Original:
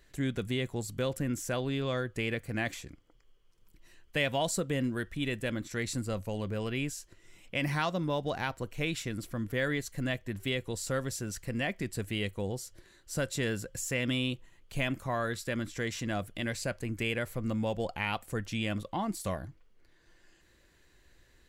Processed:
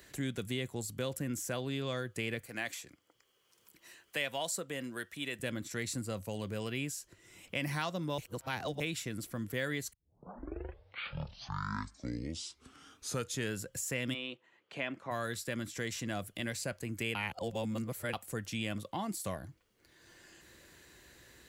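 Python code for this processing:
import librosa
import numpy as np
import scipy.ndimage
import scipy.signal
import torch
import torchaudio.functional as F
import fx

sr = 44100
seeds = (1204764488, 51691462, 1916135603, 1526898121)

y = fx.highpass(x, sr, hz=560.0, slope=6, at=(2.45, 5.39))
y = fx.bandpass_edges(y, sr, low_hz=fx.line((14.13, 480.0), (15.1, 250.0)), high_hz=2800.0, at=(14.13, 15.1), fade=0.02)
y = fx.edit(y, sr, fx.reverse_span(start_s=8.18, length_s=0.62),
    fx.tape_start(start_s=9.93, length_s=3.7),
    fx.reverse_span(start_s=17.15, length_s=0.98), tone=tone)
y = scipy.signal.sosfilt(scipy.signal.butter(2, 70.0, 'highpass', fs=sr, output='sos'), y)
y = fx.high_shelf(y, sr, hz=5400.0, db=8.0)
y = fx.band_squash(y, sr, depth_pct=40)
y = F.gain(torch.from_numpy(y), -4.5).numpy()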